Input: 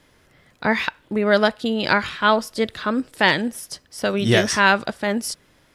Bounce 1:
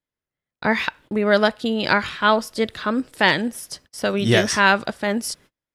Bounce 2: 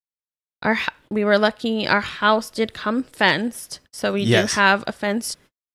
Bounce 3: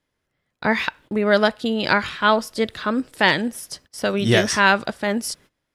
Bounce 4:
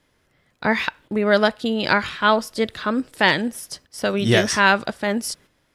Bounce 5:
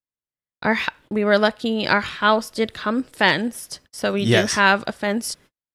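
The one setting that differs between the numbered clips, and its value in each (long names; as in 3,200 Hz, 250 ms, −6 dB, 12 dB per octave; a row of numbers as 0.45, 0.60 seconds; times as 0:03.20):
noise gate, range: −34, −58, −20, −8, −46 decibels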